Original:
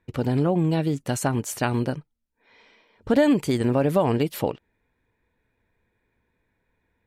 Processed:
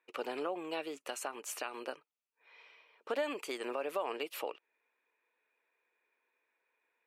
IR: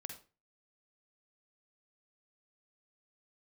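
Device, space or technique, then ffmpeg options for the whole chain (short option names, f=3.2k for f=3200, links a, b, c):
laptop speaker: -af "highpass=f=400:w=0.5412,highpass=f=400:w=1.3066,equalizer=f=1.2k:t=o:w=0.43:g=7.5,equalizer=f=2.6k:t=o:w=0.4:g=10,alimiter=limit=-17dB:level=0:latency=1:release=326,volume=-8dB"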